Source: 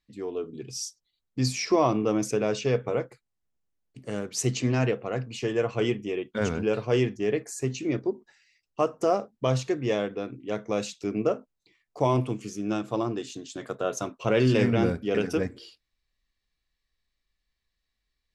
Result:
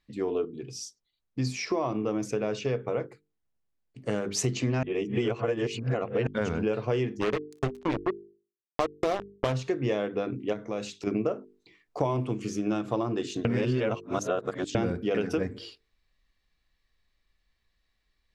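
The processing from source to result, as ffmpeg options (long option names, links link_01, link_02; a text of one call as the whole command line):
ffmpeg -i in.wav -filter_complex "[0:a]asplit=3[link_01][link_02][link_03];[link_01]afade=type=out:start_time=7.2:duration=0.02[link_04];[link_02]acrusher=bits=3:mix=0:aa=0.5,afade=type=in:start_time=7.2:duration=0.02,afade=type=out:start_time=9.52:duration=0.02[link_05];[link_03]afade=type=in:start_time=9.52:duration=0.02[link_06];[link_04][link_05][link_06]amix=inputs=3:normalize=0,asplit=3[link_07][link_08][link_09];[link_07]afade=type=out:start_time=10.52:duration=0.02[link_10];[link_08]acompressor=threshold=-44dB:ratio=2:attack=3.2:release=140:knee=1:detection=peak,afade=type=in:start_time=10.52:duration=0.02,afade=type=out:start_time=11.06:duration=0.02[link_11];[link_09]afade=type=in:start_time=11.06:duration=0.02[link_12];[link_10][link_11][link_12]amix=inputs=3:normalize=0,asplit=7[link_13][link_14][link_15][link_16][link_17][link_18][link_19];[link_13]atrim=end=0.452[link_20];[link_14]atrim=start=0.448:end=4.062,asetpts=PTS-STARTPTS,volume=-7dB[link_21];[link_15]atrim=start=4.058:end=4.832[link_22];[link_16]atrim=start=4.828:end=6.272,asetpts=PTS-STARTPTS,areverse[link_23];[link_17]atrim=start=6.268:end=13.452[link_24];[link_18]atrim=start=13.448:end=14.752,asetpts=PTS-STARTPTS,areverse[link_25];[link_19]atrim=start=14.748[link_26];[link_20][link_21]acrossfade=duration=0.004:curve1=hsin:curve2=hsin[link_27];[link_27][link_22]acrossfade=duration=0.004:curve1=hsin:curve2=hsin[link_28];[link_28][link_23]acrossfade=duration=0.004:curve1=hsin:curve2=hsin[link_29];[link_29][link_24]acrossfade=duration=0.004:curve1=hsin:curve2=hsin[link_30];[link_30][link_25]acrossfade=duration=0.004:curve1=hsin:curve2=hsin[link_31];[link_31][link_26]acrossfade=duration=0.004:curve1=hsin:curve2=hsin,highshelf=frequency=5300:gain=-10.5,bandreject=frequency=50:width_type=h:width=6,bandreject=frequency=100:width_type=h:width=6,bandreject=frequency=150:width_type=h:width=6,bandreject=frequency=200:width_type=h:width=6,bandreject=frequency=250:width_type=h:width=6,bandreject=frequency=300:width_type=h:width=6,bandreject=frequency=350:width_type=h:width=6,bandreject=frequency=400:width_type=h:width=6,bandreject=frequency=450:width_type=h:width=6,acompressor=threshold=-32dB:ratio=6,volume=7.5dB" out.wav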